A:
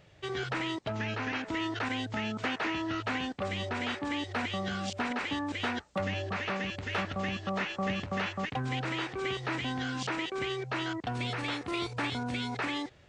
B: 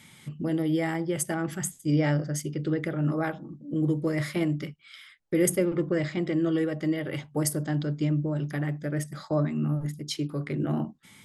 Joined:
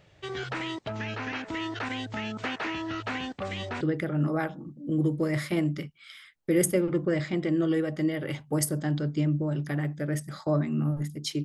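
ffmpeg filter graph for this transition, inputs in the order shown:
ffmpeg -i cue0.wav -i cue1.wav -filter_complex "[0:a]apad=whole_dur=11.44,atrim=end=11.44,atrim=end=3.812[link_01];[1:a]atrim=start=2.648:end=10.28[link_02];[link_01][link_02]acrossfade=duration=0.004:curve1=hsin:curve2=hsin" out.wav

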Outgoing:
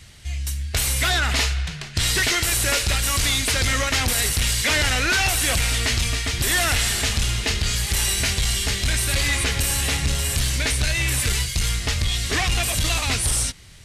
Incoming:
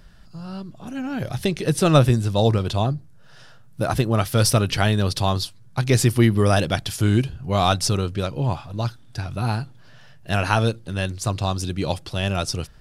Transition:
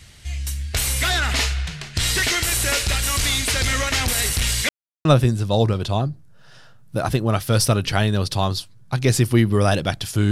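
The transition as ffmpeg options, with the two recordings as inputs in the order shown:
ffmpeg -i cue0.wav -i cue1.wav -filter_complex "[0:a]apad=whole_dur=10.31,atrim=end=10.31,asplit=2[link_01][link_02];[link_01]atrim=end=4.69,asetpts=PTS-STARTPTS,afade=type=out:start_time=4.686:duration=0.004:curve=hsin[link_03];[link_02]atrim=start=4.69:end=5.05,asetpts=PTS-STARTPTS,volume=0[link_04];[1:a]atrim=start=1.9:end=7.16,asetpts=PTS-STARTPTS,afade=type=in:duration=0.004:curve=hsin[link_05];[link_03][link_04][link_05]concat=n=3:v=0:a=1" out.wav

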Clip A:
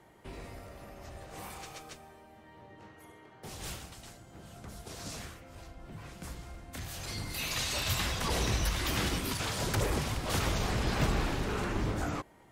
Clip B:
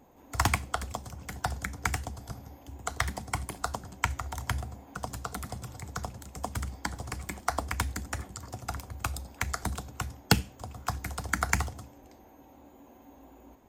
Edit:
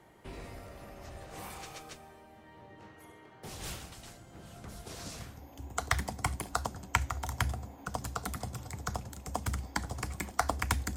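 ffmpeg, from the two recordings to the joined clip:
ffmpeg -i cue0.wav -i cue1.wav -filter_complex "[0:a]apad=whole_dur=10.96,atrim=end=10.96,atrim=end=5.53,asetpts=PTS-STARTPTS[link_01];[1:a]atrim=start=2.08:end=8.05,asetpts=PTS-STARTPTS[link_02];[link_01][link_02]acrossfade=duration=0.54:curve1=tri:curve2=tri" out.wav

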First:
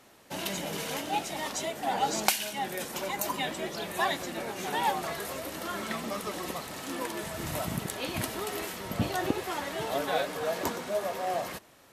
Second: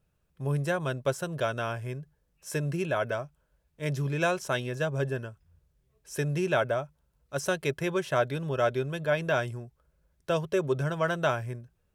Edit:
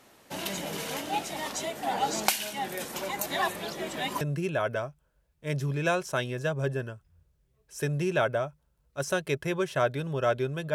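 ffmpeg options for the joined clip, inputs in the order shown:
ffmpeg -i cue0.wav -i cue1.wav -filter_complex "[0:a]apad=whole_dur=10.74,atrim=end=10.74,asplit=2[link_01][link_02];[link_01]atrim=end=3.262[link_03];[link_02]atrim=start=3.258:end=4.212,asetpts=PTS-STARTPTS,areverse[link_04];[1:a]atrim=start=2.568:end=9.1[link_05];[link_03][link_04]acrossfade=duration=0.004:curve1=hsin:curve2=hsin[link_06];[link_06][link_05]acrossfade=duration=0.004:curve1=hsin:curve2=hsin" out.wav

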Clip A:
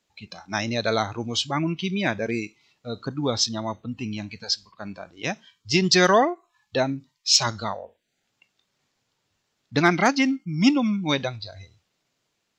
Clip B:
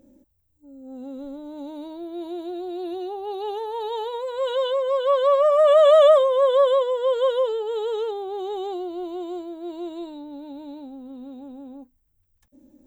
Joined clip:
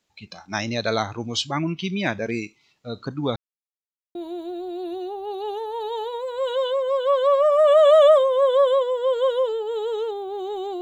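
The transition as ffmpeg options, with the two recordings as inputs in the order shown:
ffmpeg -i cue0.wav -i cue1.wav -filter_complex "[0:a]apad=whole_dur=10.81,atrim=end=10.81,asplit=2[link_01][link_02];[link_01]atrim=end=3.36,asetpts=PTS-STARTPTS,afade=type=out:start_time=3.356:duration=0.004:curve=hsin[link_03];[link_02]atrim=start=3.36:end=4.15,asetpts=PTS-STARTPTS,volume=0[link_04];[1:a]atrim=start=2.15:end=8.81,asetpts=PTS-STARTPTS,afade=type=in:duration=0.004:curve=hsin[link_05];[link_03][link_04][link_05]concat=n=3:v=0:a=1" out.wav

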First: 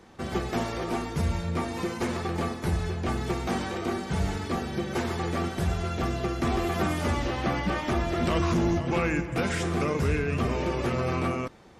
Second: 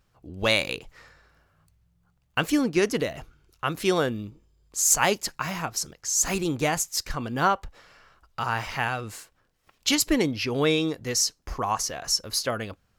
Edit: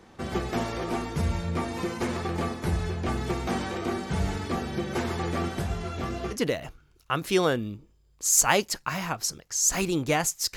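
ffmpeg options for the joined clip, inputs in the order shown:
ffmpeg -i cue0.wav -i cue1.wav -filter_complex "[0:a]asplit=3[link_01][link_02][link_03];[link_01]afade=type=out:start_time=5.61:duration=0.02[link_04];[link_02]flanger=delay=18.5:depth=3.1:speed=1.9,afade=type=in:start_time=5.61:duration=0.02,afade=type=out:start_time=6.36:duration=0.02[link_05];[link_03]afade=type=in:start_time=6.36:duration=0.02[link_06];[link_04][link_05][link_06]amix=inputs=3:normalize=0,apad=whole_dur=10.56,atrim=end=10.56,atrim=end=6.36,asetpts=PTS-STARTPTS[link_07];[1:a]atrim=start=2.83:end=7.09,asetpts=PTS-STARTPTS[link_08];[link_07][link_08]acrossfade=duration=0.06:curve1=tri:curve2=tri" out.wav

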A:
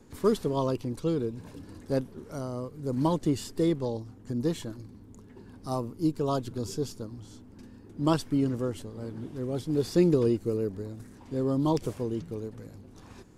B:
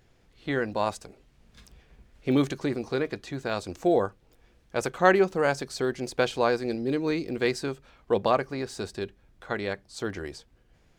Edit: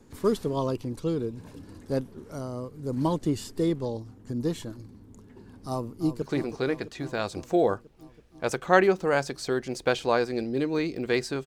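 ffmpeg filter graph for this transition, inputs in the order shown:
ffmpeg -i cue0.wav -i cue1.wav -filter_complex "[0:a]apad=whole_dur=11.46,atrim=end=11.46,atrim=end=6.222[link_01];[1:a]atrim=start=2.538:end=7.78[link_02];[link_01][link_02]acrossfade=duration=0.004:curve1=hsin:curve2=hsin,asplit=2[link_03][link_04];[link_04]afade=type=in:start_time=5.67:duration=0.01,afade=type=out:start_time=6.22:duration=0.01,aecho=0:1:330|660|990|1320|1650|1980|2310|2640|2970|3300|3630|3960:0.266073|0.199554|0.149666|0.112249|0.084187|0.0631403|0.0473552|0.0355164|0.0266373|0.019978|0.0149835|0.0112376[link_05];[link_03][link_05]amix=inputs=2:normalize=0" out.wav

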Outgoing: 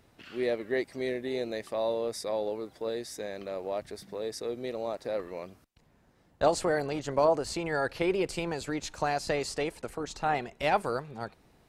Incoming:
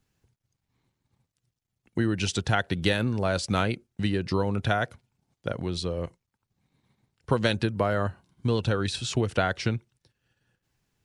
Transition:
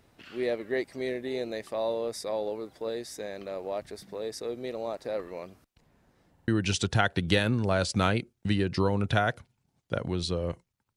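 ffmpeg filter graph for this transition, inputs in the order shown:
ffmpeg -i cue0.wav -i cue1.wav -filter_complex "[0:a]apad=whole_dur=10.96,atrim=end=10.96,asplit=3[link_01][link_02][link_03];[link_01]atrim=end=6.382[link_04];[link_02]atrim=start=6.328:end=6.382[link_05];[link_03]atrim=start=6.328:end=6.382[link_06];[1:a]atrim=start=2.018:end=6.5[link_07];[link_04][link_05]acrossfade=duration=0.004:curve1=hsin:curve2=hsin[link_08];[link_08][link_06]acrossfade=duration=0.004:curve1=hsin:curve2=hsin[link_09];[link_09][link_07]acrossfade=duration=0.004:curve1=hsin:curve2=hsin" out.wav

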